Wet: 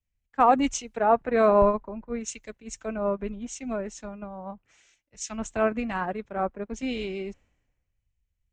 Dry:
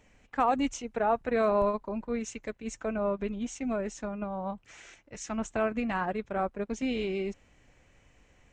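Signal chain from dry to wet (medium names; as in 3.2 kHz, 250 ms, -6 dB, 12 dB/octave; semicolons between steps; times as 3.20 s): three bands expanded up and down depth 100%; trim +1.5 dB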